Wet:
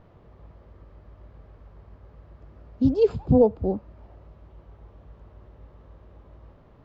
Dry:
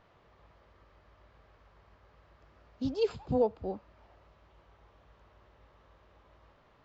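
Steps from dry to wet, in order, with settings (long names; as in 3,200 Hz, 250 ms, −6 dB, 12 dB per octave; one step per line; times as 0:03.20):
tilt shelving filter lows +9 dB, about 670 Hz
level +6.5 dB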